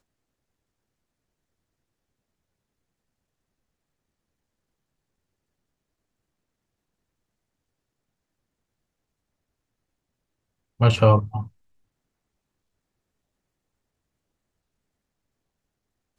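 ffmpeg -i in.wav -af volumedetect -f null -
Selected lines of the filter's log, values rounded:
mean_volume: -31.7 dB
max_volume: -3.4 dB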